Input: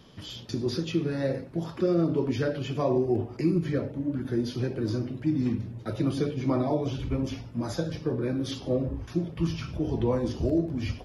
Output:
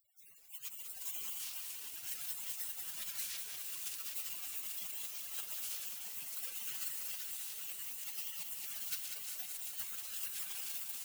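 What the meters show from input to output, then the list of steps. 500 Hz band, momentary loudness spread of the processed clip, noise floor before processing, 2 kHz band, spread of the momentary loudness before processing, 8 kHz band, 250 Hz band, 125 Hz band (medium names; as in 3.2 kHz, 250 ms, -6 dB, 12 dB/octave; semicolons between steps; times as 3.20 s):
-39.5 dB, 3 LU, -44 dBFS, -8.0 dB, 6 LU, +9.0 dB, under -40 dB, under -40 dB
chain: spectral contrast reduction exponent 0.24; peaking EQ 160 Hz -9.5 dB 0.64 oct; integer overflow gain 18 dB; reverb removal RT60 0.83 s; peaking EQ 2.8 kHz -7 dB 0.36 oct; de-hum 58.83 Hz, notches 19; on a send: filtered feedback delay 114 ms, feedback 81%, low-pass 2 kHz, level -12 dB; on the sum: compression 6:1, threshold -33 dBFS, peak gain reduction 10 dB; spectral gate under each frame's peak -25 dB weak; bit-crushed delay 193 ms, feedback 80%, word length 12-bit, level -6 dB; trim +14.5 dB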